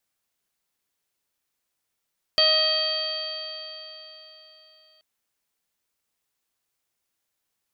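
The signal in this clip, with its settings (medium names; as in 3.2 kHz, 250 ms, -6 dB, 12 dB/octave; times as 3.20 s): stretched partials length 2.63 s, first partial 626 Hz, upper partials -8/-7.5/-9/2.5/-13/5.5 dB, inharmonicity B 0.0018, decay 3.76 s, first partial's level -23 dB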